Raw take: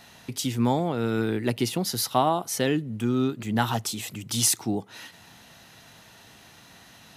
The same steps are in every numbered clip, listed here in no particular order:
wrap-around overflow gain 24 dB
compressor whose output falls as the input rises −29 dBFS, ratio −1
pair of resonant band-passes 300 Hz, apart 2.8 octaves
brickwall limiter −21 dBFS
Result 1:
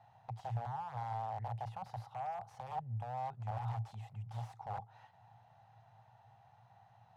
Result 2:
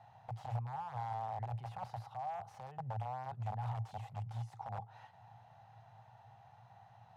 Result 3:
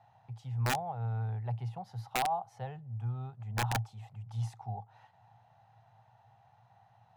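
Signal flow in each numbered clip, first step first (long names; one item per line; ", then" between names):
brickwall limiter, then wrap-around overflow, then compressor whose output falls as the input rises, then pair of resonant band-passes
compressor whose output falls as the input rises, then brickwall limiter, then wrap-around overflow, then pair of resonant band-passes
pair of resonant band-passes, then brickwall limiter, then compressor whose output falls as the input rises, then wrap-around overflow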